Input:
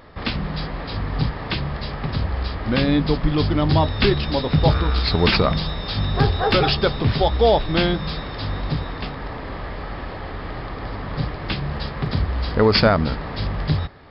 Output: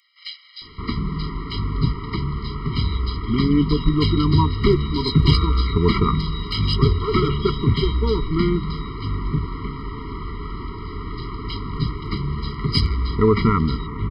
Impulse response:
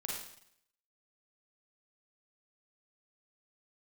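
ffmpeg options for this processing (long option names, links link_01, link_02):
-filter_complex "[0:a]acrossover=split=2400[link_01][link_02];[link_01]adelay=620[link_03];[link_03][link_02]amix=inputs=2:normalize=0,aeval=exprs='0.794*(cos(1*acos(clip(val(0)/0.794,-1,1)))-cos(1*PI/2))+0.1*(cos(2*acos(clip(val(0)/0.794,-1,1)))-cos(2*PI/2))+0.00501*(cos(7*acos(clip(val(0)/0.794,-1,1)))-cos(7*PI/2))':channel_layout=same,afftfilt=real='re*eq(mod(floor(b*sr/1024/470),2),0)':imag='im*eq(mod(floor(b*sr/1024/470),2),0)':win_size=1024:overlap=0.75,volume=2dB"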